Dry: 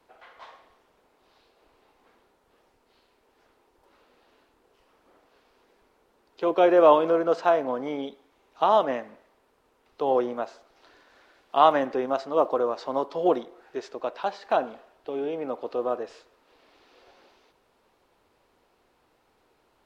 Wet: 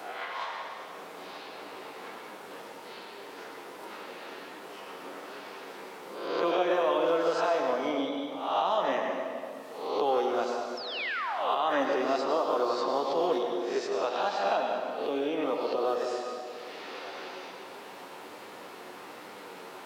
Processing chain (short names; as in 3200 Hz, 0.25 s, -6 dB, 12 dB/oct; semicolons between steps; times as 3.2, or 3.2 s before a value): spectral swells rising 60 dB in 0.52 s; HPF 140 Hz 24 dB/oct; high shelf 2000 Hz +9 dB; limiter -12.5 dBFS, peak gain reduction 11 dB; flange 1.3 Hz, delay 9.4 ms, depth 1.9 ms, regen +53%; painted sound fall, 10.77–11.56, 370–5500 Hz -41 dBFS; reverb RT60 1.3 s, pre-delay 86 ms, DRR 3.5 dB; three-band squash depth 70%